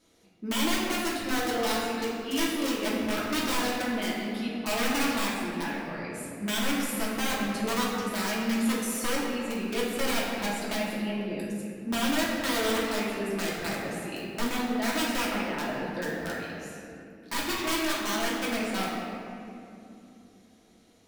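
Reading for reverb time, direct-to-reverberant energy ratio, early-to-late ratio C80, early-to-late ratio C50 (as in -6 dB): 2.8 s, -7.0 dB, 1.0 dB, -0.5 dB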